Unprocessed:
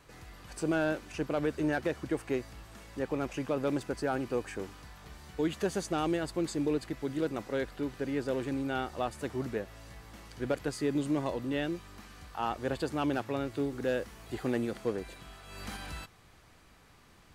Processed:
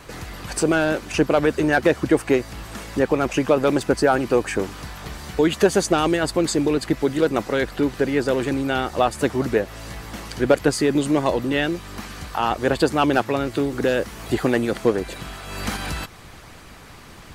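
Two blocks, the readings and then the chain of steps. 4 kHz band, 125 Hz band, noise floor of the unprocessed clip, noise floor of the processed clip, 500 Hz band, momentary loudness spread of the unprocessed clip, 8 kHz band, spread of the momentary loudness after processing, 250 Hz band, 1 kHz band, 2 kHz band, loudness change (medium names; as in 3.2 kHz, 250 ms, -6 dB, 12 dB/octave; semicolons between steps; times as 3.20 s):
+14.5 dB, +11.0 dB, -59 dBFS, -43 dBFS, +13.5 dB, 16 LU, +15.5 dB, 14 LU, +11.5 dB, +13.5 dB, +14.0 dB, +12.5 dB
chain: in parallel at -2.5 dB: compression, threshold -42 dBFS, peak gain reduction 15.5 dB; on the sum: harmonic-percussive split percussive +7 dB; trim +7.5 dB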